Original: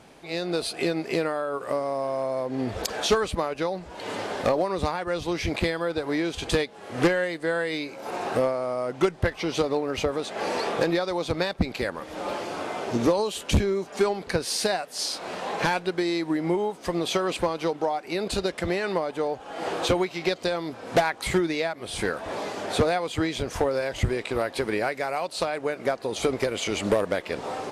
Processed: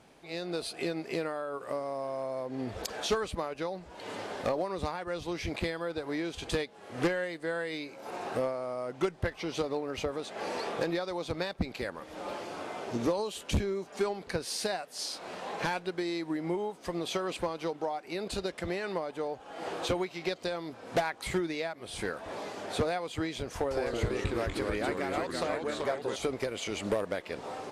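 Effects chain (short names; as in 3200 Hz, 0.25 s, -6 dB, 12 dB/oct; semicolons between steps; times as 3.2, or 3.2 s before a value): 23.55–26.16 echoes that change speed 0.155 s, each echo -2 st, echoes 3; gain -7.5 dB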